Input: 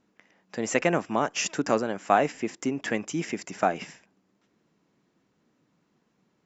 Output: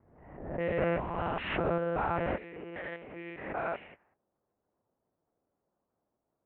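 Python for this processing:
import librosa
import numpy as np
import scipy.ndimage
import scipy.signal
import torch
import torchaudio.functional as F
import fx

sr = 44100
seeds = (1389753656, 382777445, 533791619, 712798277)

y = fx.spec_steps(x, sr, hold_ms=200)
y = scipy.signal.sosfilt(scipy.signal.butter(2, 1900.0, 'lowpass', fs=sr, output='sos'), y)
y = fx.low_shelf(y, sr, hz=210.0, db=-12.0)
y = y + 0.91 * np.pad(y, (int(2.1 * sr / 1000.0), 0))[:len(y)]
y = fx.lpc_monotone(y, sr, seeds[0], pitch_hz=170.0, order=8)
y = fx.env_lowpass(y, sr, base_hz=670.0, full_db=-26.5)
y = fx.highpass(y, sr, hz=fx.steps((0.0, 59.0), (2.36, 460.0)), slope=6)
y = fx.pre_swell(y, sr, db_per_s=59.0)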